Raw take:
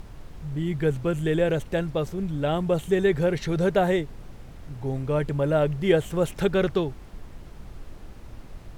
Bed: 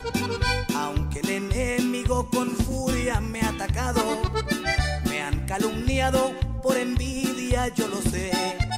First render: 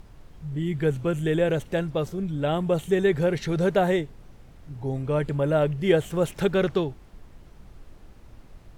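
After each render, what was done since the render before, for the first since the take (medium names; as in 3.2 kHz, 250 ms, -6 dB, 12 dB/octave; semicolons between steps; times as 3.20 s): noise print and reduce 6 dB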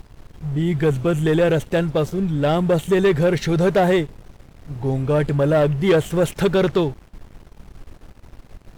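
waveshaping leveller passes 2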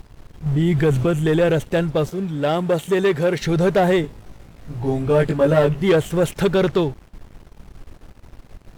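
0.46–1.06 s: level flattener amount 50%; 2.09–3.41 s: high-pass 220 Hz 6 dB/octave; 4.02–5.81 s: doubling 18 ms -2 dB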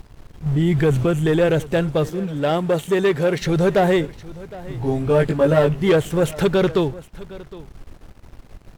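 delay 762 ms -19 dB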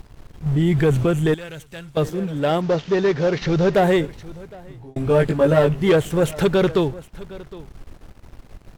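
1.34–1.97 s: amplifier tone stack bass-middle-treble 5-5-5; 2.61–3.74 s: CVSD coder 32 kbps; 4.28–4.96 s: fade out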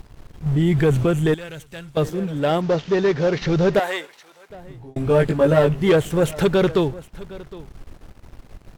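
3.79–4.50 s: high-pass 860 Hz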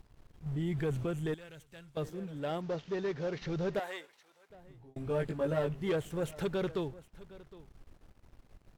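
trim -16 dB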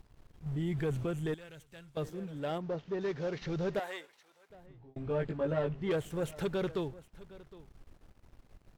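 2.58–3.01 s: treble shelf 2.3 kHz -9.5 dB; 4.66–5.91 s: distance through air 120 m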